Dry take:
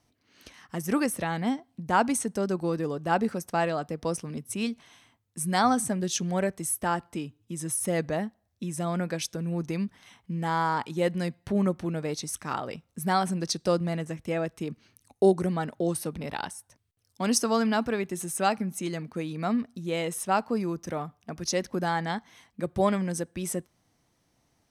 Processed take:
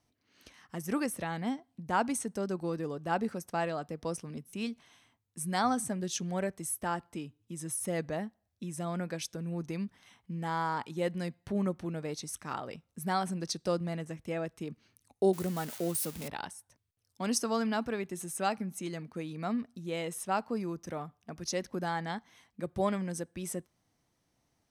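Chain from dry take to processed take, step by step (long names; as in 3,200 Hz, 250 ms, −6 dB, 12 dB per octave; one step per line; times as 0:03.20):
0:15.33–0:16.28: spike at every zero crossing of −24.5 dBFS
buffer that repeats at 0:04.48, samples 256, times 8
level −6 dB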